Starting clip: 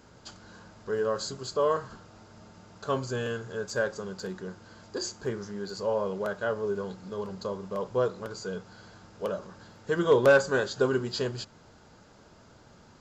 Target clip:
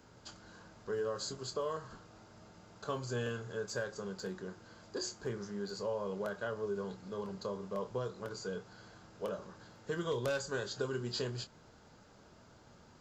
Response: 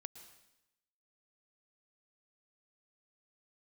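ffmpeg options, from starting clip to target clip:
-filter_complex "[0:a]acrossover=split=130|3000[s0][s1][s2];[s1]acompressor=threshold=0.0355:ratio=6[s3];[s0][s3][s2]amix=inputs=3:normalize=0,asplit=2[s4][s5];[1:a]atrim=start_sample=2205,atrim=end_sample=3969,adelay=25[s6];[s5][s6]afir=irnorm=-1:irlink=0,volume=0.562[s7];[s4][s7]amix=inputs=2:normalize=0,volume=0.562"

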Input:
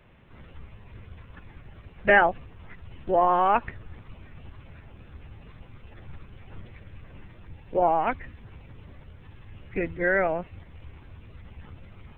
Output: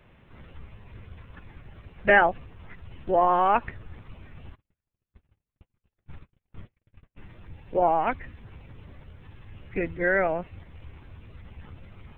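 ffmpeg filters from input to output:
-filter_complex "[0:a]asplit=3[s0][s1][s2];[s0]afade=t=out:st=4.54:d=0.02[s3];[s1]agate=range=0.00501:threshold=0.0112:ratio=16:detection=peak,afade=t=in:st=4.54:d=0.02,afade=t=out:st=7.16:d=0.02[s4];[s2]afade=t=in:st=7.16:d=0.02[s5];[s3][s4][s5]amix=inputs=3:normalize=0"

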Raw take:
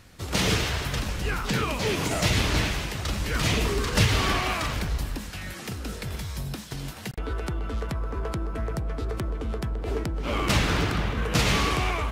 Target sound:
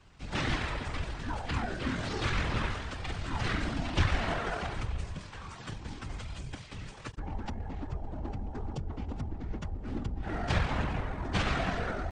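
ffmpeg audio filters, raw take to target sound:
-af "afftfilt=real='hypot(re,im)*cos(2*PI*random(0))':imag='hypot(re,im)*sin(2*PI*random(1))':win_size=512:overlap=0.75,asetrate=26990,aresample=44100,atempo=1.63392,highshelf=f=9800:g=-10.5"

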